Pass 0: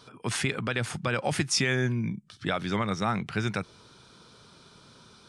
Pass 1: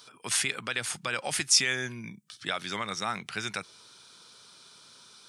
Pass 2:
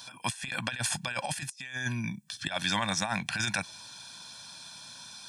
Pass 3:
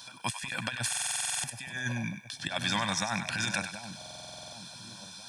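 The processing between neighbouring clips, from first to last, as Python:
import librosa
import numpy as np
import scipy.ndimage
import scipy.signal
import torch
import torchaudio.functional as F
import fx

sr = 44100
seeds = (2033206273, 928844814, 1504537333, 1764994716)

y1 = fx.tilt_eq(x, sr, slope=3.5)
y1 = y1 * librosa.db_to_amplitude(-3.5)
y2 = y1 + 0.94 * np.pad(y1, (int(1.2 * sr / 1000.0), 0))[:len(y1)]
y2 = fx.over_compress(y2, sr, threshold_db=-32.0, ratio=-0.5)
y3 = fx.echo_split(y2, sr, split_hz=780.0, low_ms=723, high_ms=98, feedback_pct=52, wet_db=-9.0)
y3 = fx.buffer_glitch(y3, sr, at_s=(0.88, 3.97), block=2048, repeats=11)
y3 = y3 * librosa.db_to_amplitude(-1.0)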